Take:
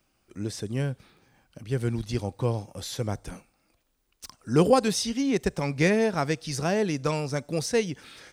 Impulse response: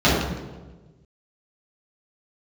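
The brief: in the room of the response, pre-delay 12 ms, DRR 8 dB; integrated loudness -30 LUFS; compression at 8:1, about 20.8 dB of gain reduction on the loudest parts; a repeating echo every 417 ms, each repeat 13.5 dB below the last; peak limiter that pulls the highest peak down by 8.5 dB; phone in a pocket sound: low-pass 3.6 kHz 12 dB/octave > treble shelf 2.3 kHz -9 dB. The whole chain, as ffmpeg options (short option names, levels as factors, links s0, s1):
-filter_complex "[0:a]acompressor=threshold=0.0141:ratio=8,alimiter=level_in=2.82:limit=0.0631:level=0:latency=1,volume=0.355,aecho=1:1:417|834:0.211|0.0444,asplit=2[s0][s1];[1:a]atrim=start_sample=2205,adelay=12[s2];[s1][s2]afir=irnorm=-1:irlink=0,volume=0.0282[s3];[s0][s3]amix=inputs=2:normalize=0,lowpass=3600,highshelf=f=2300:g=-9,volume=3.98"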